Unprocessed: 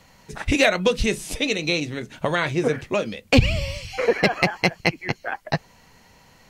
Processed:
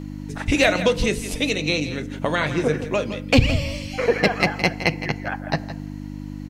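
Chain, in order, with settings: delay 165 ms -12.5 dB; FDN reverb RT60 1.1 s, high-frequency decay 0.45×, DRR 15.5 dB; mains buzz 50 Hz, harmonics 6, -33 dBFS 0 dB/octave

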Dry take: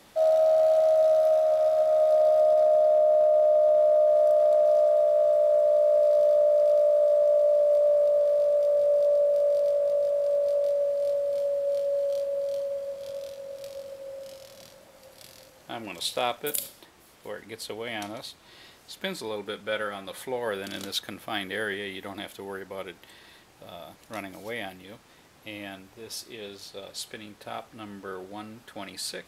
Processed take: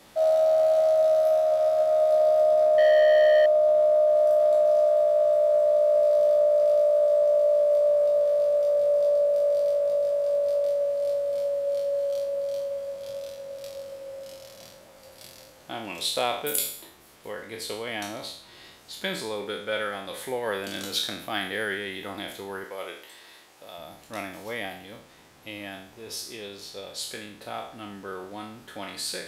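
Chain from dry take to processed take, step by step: spectral sustain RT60 0.58 s; 2.78–3.46 s: waveshaping leveller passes 2; 22.64–23.78 s: tone controls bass -13 dB, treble +2 dB

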